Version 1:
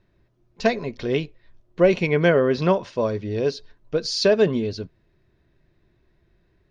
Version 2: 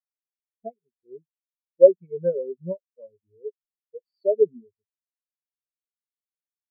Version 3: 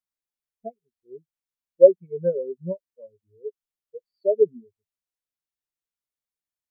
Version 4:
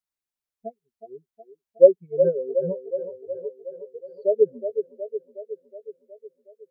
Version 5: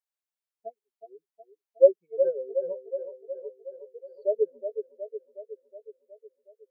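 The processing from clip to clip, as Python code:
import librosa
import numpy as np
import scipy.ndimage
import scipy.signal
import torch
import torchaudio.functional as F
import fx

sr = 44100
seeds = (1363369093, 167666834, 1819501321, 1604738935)

y1 = fx.spectral_expand(x, sr, expansion=4.0)
y1 = y1 * 10.0 ** (3.5 / 20.0)
y2 = fx.low_shelf(y1, sr, hz=100.0, db=8.5)
y3 = fx.echo_wet_bandpass(y2, sr, ms=367, feedback_pct=61, hz=640.0, wet_db=-8)
y4 = fx.ladder_highpass(y3, sr, hz=370.0, resonance_pct=20)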